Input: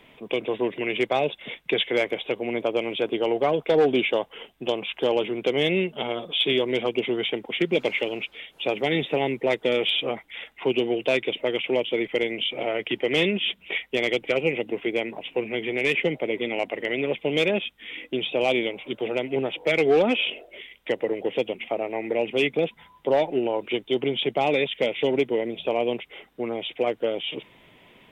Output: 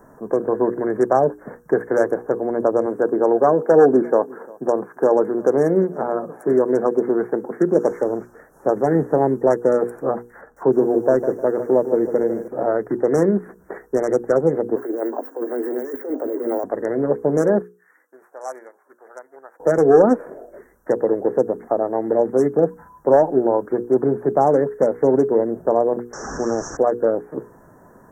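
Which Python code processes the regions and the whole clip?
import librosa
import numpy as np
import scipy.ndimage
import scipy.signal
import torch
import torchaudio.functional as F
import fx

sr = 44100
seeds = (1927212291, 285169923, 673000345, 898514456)

y = fx.chain(x, sr, fx.highpass(hz=150.0, slope=12),
    fx.echo_single(ms=347, db=-23.0), at=(2.86, 7.91))
y = fx.chain(y, sr, fx.high_shelf(hz=3300.0, db=-12.0),
    fx.echo_crushed(ms=153, feedback_pct=35, bits=9, wet_db=-10.5), at=(10.41, 12.48))
y = fx.chain(y, sr, fx.cheby1_highpass(hz=240.0, order=10),
    fx.over_compress(threshold_db=-30.0, ratio=-1.0),
    fx.resample_bad(factor=2, down='none', up='hold'), at=(14.76, 16.64))
y = fx.chain(y, sr, fx.highpass(hz=1400.0, slope=12),
    fx.upward_expand(threshold_db=-44.0, expansion=1.5), at=(17.62, 19.6))
y = fx.chain(y, sr, fx.delta_mod(bps=32000, step_db=-30.0),
    fx.high_shelf(hz=4500.0, db=6.5), at=(26.13, 26.77))
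y = scipy.signal.sosfilt(scipy.signal.cheby1(5, 1.0, [1700.0, 5600.0], 'bandstop', fs=sr, output='sos'), y)
y = fx.hum_notches(y, sr, base_hz=60, count=8)
y = y * 10.0 ** (8.5 / 20.0)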